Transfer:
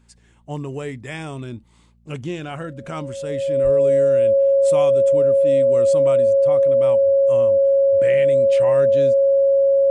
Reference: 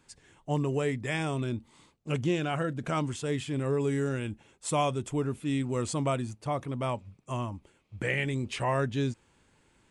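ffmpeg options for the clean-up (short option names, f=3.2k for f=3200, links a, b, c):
-filter_complex "[0:a]bandreject=f=58:t=h:w=4,bandreject=f=116:t=h:w=4,bandreject=f=174:t=h:w=4,bandreject=f=232:t=h:w=4,bandreject=f=550:w=30,asplit=3[a][b][c];[a]afade=t=out:st=3.63:d=0.02[d];[b]highpass=f=140:w=0.5412,highpass=f=140:w=1.3066,afade=t=in:st=3.63:d=0.02,afade=t=out:st=3.75:d=0.02[e];[c]afade=t=in:st=3.75:d=0.02[f];[d][e][f]amix=inputs=3:normalize=0"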